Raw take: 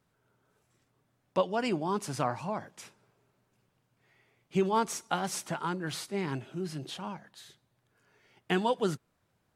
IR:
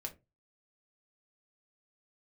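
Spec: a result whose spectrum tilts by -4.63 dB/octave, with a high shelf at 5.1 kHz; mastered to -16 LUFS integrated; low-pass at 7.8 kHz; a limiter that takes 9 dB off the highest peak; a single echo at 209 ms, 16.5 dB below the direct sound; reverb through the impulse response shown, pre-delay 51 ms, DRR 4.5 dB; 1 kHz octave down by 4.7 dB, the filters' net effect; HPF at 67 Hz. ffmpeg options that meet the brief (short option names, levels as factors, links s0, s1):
-filter_complex "[0:a]highpass=67,lowpass=7800,equalizer=f=1000:t=o:g=-6,highshelf=f=5100:g=3.5,alimiter=limit=0.075:level=0:latency=1,aecho=1:1:209:0.15,asplit=2[s0][s1];[1:a]atrim=start_sample=2205,adelay=51[s2];[s1][s2]afir=irnorm=-1:irlink=0,volume=0.75[s3];[s0][s3]amix=inputs=2:normalize=0,volume=8.41"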